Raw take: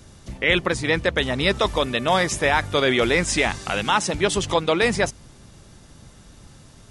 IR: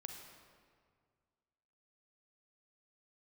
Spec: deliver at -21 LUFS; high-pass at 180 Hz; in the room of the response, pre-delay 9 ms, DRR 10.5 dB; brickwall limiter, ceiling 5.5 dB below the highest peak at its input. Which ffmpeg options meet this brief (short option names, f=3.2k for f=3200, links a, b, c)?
-filter_complex "[0:a]highpass=180,alimiter=limit=-10.5dB:level=0:latency=1,asplit=2[a][b];[1:a]atrim=start_sample=2205,adelay=9[c];[b][c]afir=irnorm=-1:irlink=0,volume=-7dB[d];[a][d]amix=inputs=2:normalize=0,volume=2dB"